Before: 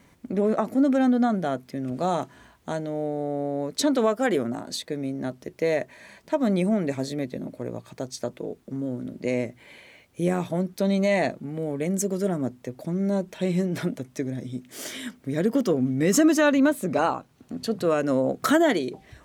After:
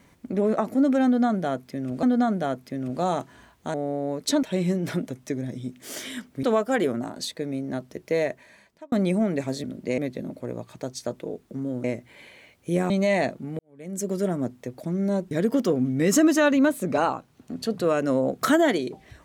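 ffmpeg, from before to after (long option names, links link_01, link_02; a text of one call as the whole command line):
ffmpeg -i in.wav -filter_complex "[0:a]asplit=12[link_01][link_02][link_03][link_04][link_05][link_06][link_07][link_08][link_09][link_10][link_11][link_12];[link_01]atrim=end=2.032[link_13];[link_02]atrim=start=1.048:end=2.762[link_14];[link_03]atrim=start=3.248:end=3.942[link_15];[link_04]atrim=start=13.318:end=15.322[link_16];[link_05]atrim=start=3.938:end=6.43,asetpts=PTS-STARTPTS,afade=type=out:start_time=1.752:duration=0.74[link_17];[link_06]atrim=start=6.43:end=7.152,asetpts=PTS-STARTPTS,afade=type=in:duration=0.004:curve=hsin[link_18];[link_07]atrim=start=9.008:end=9.352[link_19];[link_08]atrim=start=7.148:end=9.012[link_20];[link_09]atrim=start=9.348:end=10.412[link_21];[link_10]atrim=start=10.908:end=11.6,asetpts=PTS-STARTPTS,afade=type=out:start_time=0.688:duration=0.004:curve=hsin[link_22];[link_11]atrim=start=11.6:end=13.322,asetpts=PTS-STARTPTS,afade=type=in:duration=0.52:curve=qua[link_23];[link_12]atrim=start=15.318[link_24];[link_13][link_14]acrossfade=duration=0.004:curve1=hsin:curve2=hsin[link_25];[link_25][link_15]acrossfade=duration=0.004:curve1=hsin:curve2=hsin[link_26];[link_26][link_16]acrossfade=duration=0.004:curve1=hsin:curve2=hsin[link_27];[link_17][link_18]concat=n=2:v=0:a=1[link_28];[link_27][link_28]acrossfade=duration=0.004:curve1=hsin:curve2=hsin[link_29];[link_29][link_19]acrossfade=duration=0.004:curve1=hsin:curve2=hsin[link_30];[link_30][link_20]acrossfade=duration=0.004:curve1=hsin:curve2=hsin[link_31];[link_31][link_21]acrossfade=duration=0.004:curve1=hsin:curve2=hsin[link_32];[link_22][link_23]concat=n=2:v=0:a=1[link_33];[link_32][link_33]acrossfade=duration=0.004:curve1=hsin:curve2=hsin[link_34];[link_34][link_24]acrossfade=duration=0.004:curve1=hsin:curve2=hsin" out.wav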